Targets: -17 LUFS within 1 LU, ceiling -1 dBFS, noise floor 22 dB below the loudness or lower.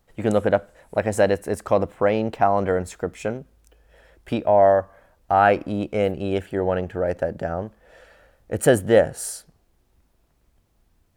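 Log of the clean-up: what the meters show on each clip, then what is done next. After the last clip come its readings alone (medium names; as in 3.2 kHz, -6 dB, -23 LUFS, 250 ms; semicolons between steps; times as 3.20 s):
loudness -22.0 LUFS; peak level -2.5 dBFS; loudness target -17.0 LUFS
-> trim +5 dB; peak limiter -1 dBFS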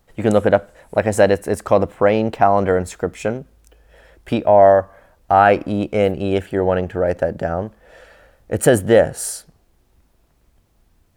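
loudness -17.5 LUFS; peak level -1.0 dBFS; noise floor -60 dBFS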